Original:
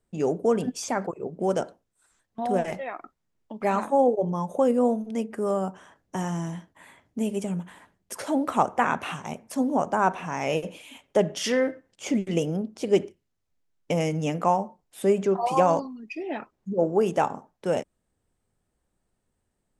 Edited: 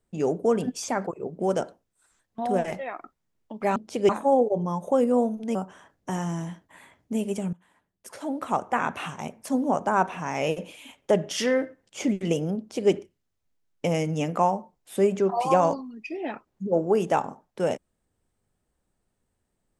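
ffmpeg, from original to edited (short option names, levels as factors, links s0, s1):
-filter_complex "[0:a]asplit=5[s0][s1][s2][s3][s4];[s0]atrim=end=3.762[s5];[s1]atrim=start=12.638:end=12.972[s6];[s2]atrim=start=3.758:end=5.222[s7];[s3]atrim=start=5.608:end=7.59,asetpts=PTS-STARTPTS,afade=t=out:st=1.978:d=0.004:c=hsin:silence=0.1[s8];[s4]atrim=start=7.59,asetpts=PTS-STARTPTS,afade=t=in:d=1.66:silence=0.1[s9];[s5][s6]acrossfade=d=0.004:c1=hsin:c2=hsin[s10];[s10][s7]acrossfade=d=0.004:c1=hsin:c2=hsin[s11];[s8][s9]concat=n=2:v=0:a=1[s12];[s11][s12]acrossfade=d=0.004:c1=hsin:c2=hsin"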